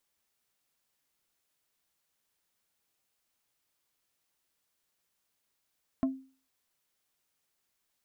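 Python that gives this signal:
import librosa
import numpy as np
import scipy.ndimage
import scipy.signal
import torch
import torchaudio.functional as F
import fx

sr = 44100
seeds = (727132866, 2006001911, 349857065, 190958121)

y = fx.strike_wood(sr, length_s=0.45, level_db=-22.0, body='plate', hz=265.0, decay_s=0.39, tilt_db=8, modes=5)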